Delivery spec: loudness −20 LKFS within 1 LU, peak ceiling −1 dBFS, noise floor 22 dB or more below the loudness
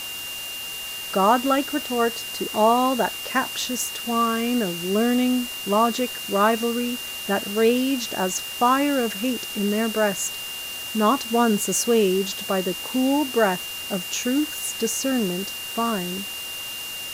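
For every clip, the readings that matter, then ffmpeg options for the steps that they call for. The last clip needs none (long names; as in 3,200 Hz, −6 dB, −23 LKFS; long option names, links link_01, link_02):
interfering tone 2,800 Hz; level of the tone −32 dBFS; background noise floor −33 dBFS; target noise floor −45 dBFS; integrated loudness −23.0 LKFS; sample peak −5.5 dBFS; target loudness −20.0 LKFS
→ -af "bandreject=frequency=2800:width=30"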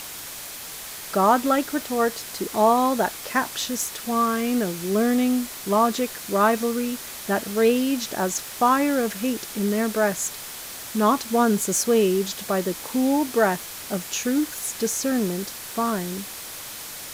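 interfering tone none found; background noise floor −37 dBFS; target noise floor −46 dBFS
→ -af "afftdn=noise_reduction=9:noise_floor=-37"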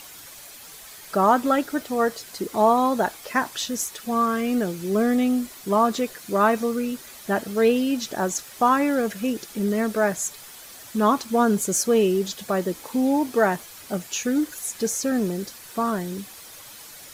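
background noise floor −43 dBFS; target noise floor −46 dBFS
→ -af "afftdn=noise_reduction=6:noise_floor=-43"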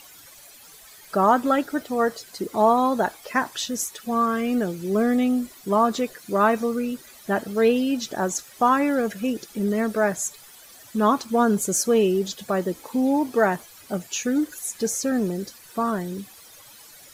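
background noise floor −48 dBFS; integrated loudness −23.5 LKFS; sample peak −6.0 dBFS; target loudness −20.0 LKFS
→ -af "volume=3.5dB"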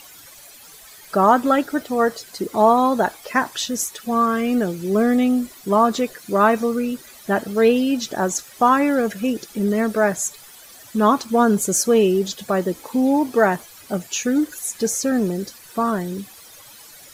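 integrated loudness −20.0 LKFS; sample peak −2.5 dBFS; background noise floor −44 dBFS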